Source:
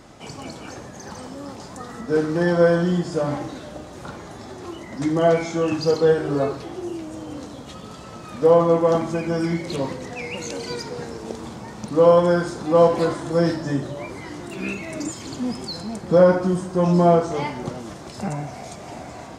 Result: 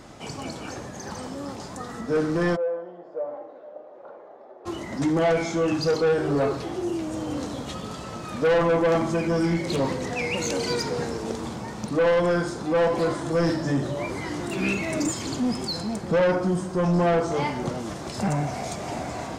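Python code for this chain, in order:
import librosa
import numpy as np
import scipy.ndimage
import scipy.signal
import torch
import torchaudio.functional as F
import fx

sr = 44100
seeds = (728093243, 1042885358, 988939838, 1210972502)

y = fx.rider(x, sr, range_db=5, speed_s=2.0)
y = 10.0 ** (-17.0 / 20.0) * np.tanh(y / 10.0 ** (-17.0 / 20.0))
y = fx.ladder_bandpass(y, sr, hz=620.0, resonance_pct=55, at=(2.55, 4.65), fade=0.02)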